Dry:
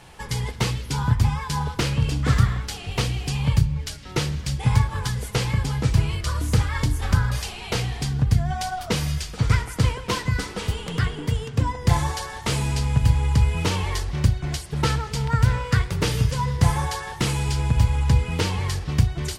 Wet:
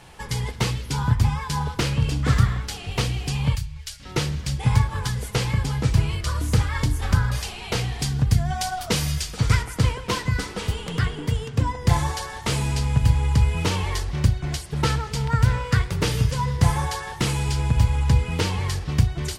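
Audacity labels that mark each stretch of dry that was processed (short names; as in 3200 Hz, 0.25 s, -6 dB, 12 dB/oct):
3.550000	4.000000	passive tone stack bass-middle-treble 10-0-10
7.990000	9.630000	high shelf 3700 Hz +6 dB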